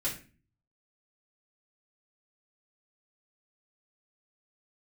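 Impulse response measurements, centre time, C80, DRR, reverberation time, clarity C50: 23 ms, 14.0 dB, −8.0 dB, 0.35 s, 8.5 dB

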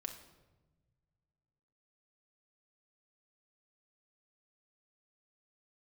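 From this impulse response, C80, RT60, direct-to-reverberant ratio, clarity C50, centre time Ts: 11.5 dB, 1.2 s, 3.0 dB, 9.0 dB, 16 ms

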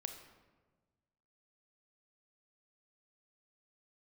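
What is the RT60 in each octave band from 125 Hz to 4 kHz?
1.9, 1.6, 1.5, 1.2, 1.0, 0.75 seconds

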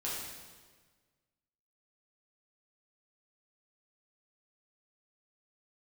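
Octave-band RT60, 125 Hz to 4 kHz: 1.8, 1.6, 1.5, 1.4, 1.4, 1.3 seconds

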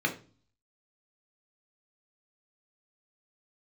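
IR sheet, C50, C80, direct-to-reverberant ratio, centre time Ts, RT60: 12.0 dB, 17.5 dB, 1.5 dB, 12 ms, 0.40 s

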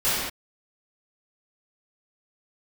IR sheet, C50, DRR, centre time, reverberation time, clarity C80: −3.0 dB, −16.0 dB, 92 ms, non-exponential decay, 0.5 dB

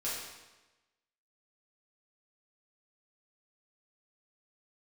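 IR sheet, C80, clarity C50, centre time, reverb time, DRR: 3.0 dB, 0.5 dB, 73 ms, 1.1 s, −9.0 dB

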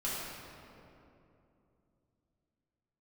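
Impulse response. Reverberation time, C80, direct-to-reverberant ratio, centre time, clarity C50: 2.8 s, −0.5 dB, −8.5 dB, 151 ms, −2.5 dB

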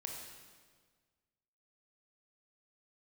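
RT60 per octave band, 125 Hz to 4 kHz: 1.9, 1.7, 1.7, 1.5, 1.4, 1.4 seconds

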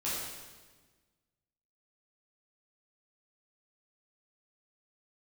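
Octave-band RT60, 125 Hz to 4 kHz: 1.7, 1.7, 1.5, 1.3, 1.3, 1.2 seconds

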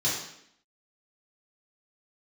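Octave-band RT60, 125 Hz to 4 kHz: 0.65, 0.85, 0.75, 0.70, 0.70, 0.70 seconds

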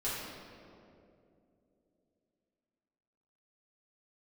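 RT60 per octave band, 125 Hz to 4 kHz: 3.3, 3.7, 3.4, 2.2, 1.7, 1.4 seconds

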